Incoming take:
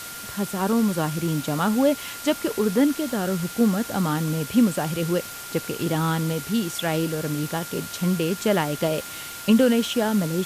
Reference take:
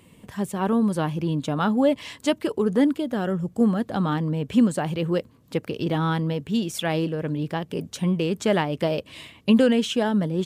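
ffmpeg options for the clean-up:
-af "adeclick=t=4,bandreject=f=1400:w=30,afwtdn=0.016"

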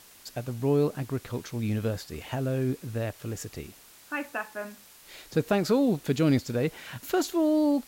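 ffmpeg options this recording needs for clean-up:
-af "afwtdn=0.0025"

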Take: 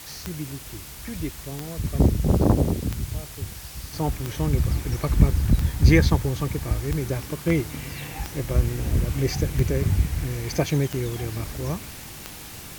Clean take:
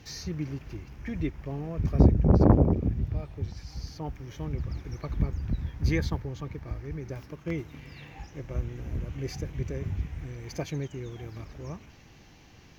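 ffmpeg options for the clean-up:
-af "adeclick=t=4,afwtdn=0.0089,asetnsamples=n=441:p=0,asendcmd='3.93 volume volume -10.5dB',volume=1"

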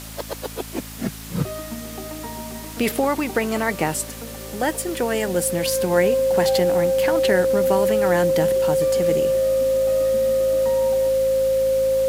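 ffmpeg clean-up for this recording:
-af "adeclick=t=4,bandreject=f=54.4:t=h:w=4,bandreject=f=108.8:t=h:w=4,bandreject=f=163.2:t=h:w=4,bandreject=f=217.6:t=h:w=4,bandreject=f=272:t=h:w=4,bandreject=f=530:w=30,afftdn=nr=30:nf=-35"

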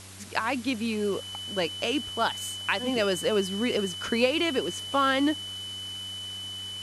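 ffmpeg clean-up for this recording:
-af "bandreject=f=96.2:t=h:w=4,bandreject=f=192.4:t=h:w=4,bandreject=f=288.6:t=h:w=4,bandreject=f=384.8:t=h:w=4,bandreject=f=3000:w=30,afwtdn=0.0056"

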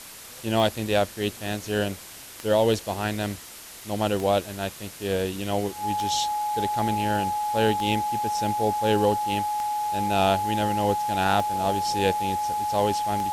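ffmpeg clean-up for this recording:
-af "adeclick=t=4,bandreject=f=840:w=30,afftdn=nr=27:nf=-43"

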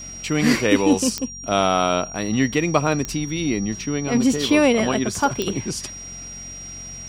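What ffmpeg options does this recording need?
-af "adeclick=t=4,bandreject=f=45.4:t=h:w=4,bandreject=f=90.8:t=h:w=4,bandreject=f=136.2:t=h:w=4,bandreject=f=181.6:t=h:w=4,bandreject=f=227:t=h:w=4,bandreject=f=5700:w=30"

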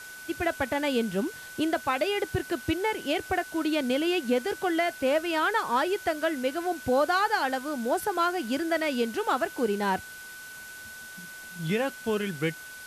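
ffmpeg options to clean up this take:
-af "adeclick=t=4,bandreject=f=1500:w=30,afftdn=nr=30:nf=-43"

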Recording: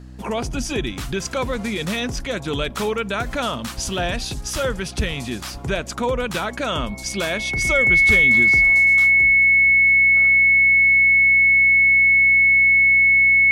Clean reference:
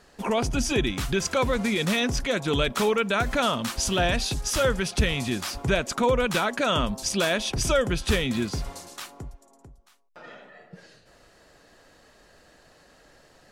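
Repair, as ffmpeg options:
-af "bandreject=f=63.1:t=h:w=4,bandreject=f=126.2:t=h:w=4,bandreject=f=189.3:t=h:w=4,bandreject=f=252.4:t=h:w=4,bandreject=f=315.5:t=h:w=4,bandreject=f=2200:w=30,asetnsamples=n=441:p=0,asendcmd='10.27 volume volume 5.5dB',volume=1"

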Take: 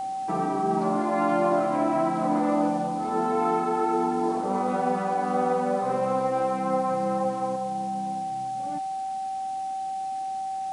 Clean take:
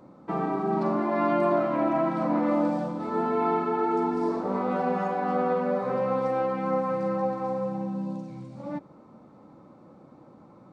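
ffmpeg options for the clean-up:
-af "bandreject=f=770:w=30,afwtdn=0.0032,asetnsamples=n=441:p=0,asendcmd='7.56 volume volume 5dB',volume=1"

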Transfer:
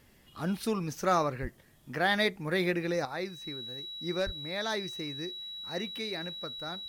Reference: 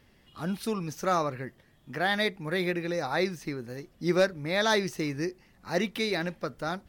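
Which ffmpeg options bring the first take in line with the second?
-filter_complex "[0:a]bandreject=f=3900:w=30,asplit=3[s0][s1][s2];[s0]afade=t=out:st=1.41:d=0.02[s3];[s1]highpass=f=140:w=0.5412,highpass=f=140:w=1.3066,afade=t=in:st=1.41:d=0.02,afade=t=out:st=1.53:d=0.02[s4];[s2]afade=t=in:st=1.53:d=0.02[s5];[s3][s4][s5]amix=inputs=3:normalize=0,asplit=3[s6][s7][s8];[s6]afade=t=out:st=4.25:d=0.02[s9];[s7]highpass=f=140:w=0.5412,highpass=f=140:w=1.3066,afade=t=in:st=4.25:d=0.02,afade=t=out:st=4.37:d=0.02[s10];[s8]afade=t=in:st=4.37:d=0.02[s11];[s9][s10][s11]amix=inputs=3:normalize=0,agate=range=0.0891:threshold=0.00398,asetnsamples=n=441:p=0,asendcmd='3.05 volume volume 8.5dB',volume=1"

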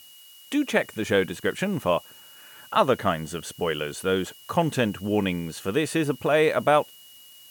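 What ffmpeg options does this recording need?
-af "bandreject=f=2900:w=30,afftdn=nr=20:nf=-49"

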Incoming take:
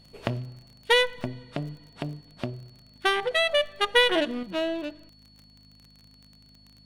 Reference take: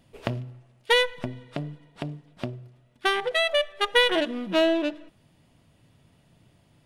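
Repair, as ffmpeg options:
-af "adeclick=t=4,bandreject=f=51.7:t=h:w=4,bandreject=f=103.4:t=h:w=4,bandreject=f=155.1:t=h:w=4,bandreject=f=206.8:t=h:w=4,bandreject=f=258.5:t=h:w=4,bandreject=f=4400:w=30,asetnsamples=n=441:p=0,asendcmd='4.43 volume volume 7dB',volume=1"

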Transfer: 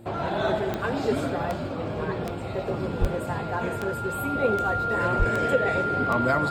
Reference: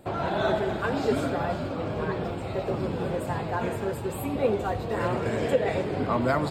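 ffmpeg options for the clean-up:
-filter_complex "[0:a]adeclick=t=4,bandreject=f=114.2:t=h:w=4,bandreject=f=228.4:t=h:w=4,bandreject=f=342.6:t=h:w=4,bandreject=f=1400:w=30,asplit=3[s0][s1][s2];[s0]afade=t=out:st=3:d=0.02[s3];[s1]highpass=f=140:w=0.5412,highpass=f=140:w=1.3066,afade=t=in:st=3:d=0.02,afade=t=out:st=3.12:d=0.02[s4];[s2]afade=t=in:st=3.12:d=0.02[s5];[s3][s4][s5]amix=inputs=3:normalize=0,asplit=3[s6][s7][s8];[s6]afade=t=out:st=5.18:d=0.02[s9];[s7]highpass=f=140:w=0.5412,highpass=f=140:w=1.3066,afade=t=in:st=5.18:d=0.02,afade=t=out:st=5.3:d=0.02[s10];[s8]afade=t=in:st=5.3:d=0.02[s11];[s9][s10][s11]amix=inputs=3:normalize=0"

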